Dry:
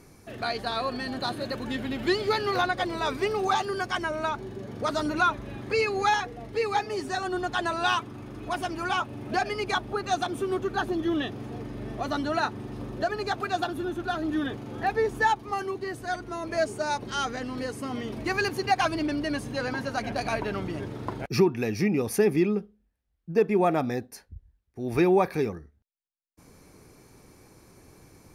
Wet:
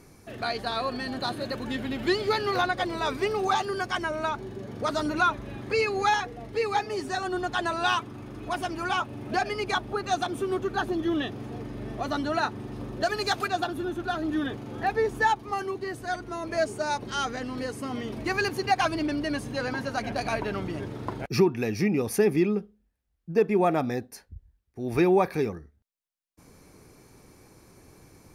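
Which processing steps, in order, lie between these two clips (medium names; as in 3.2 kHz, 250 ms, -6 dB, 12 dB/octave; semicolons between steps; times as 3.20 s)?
13.03–13.48 s: treble shelf 2.6 kHz +11.5 dB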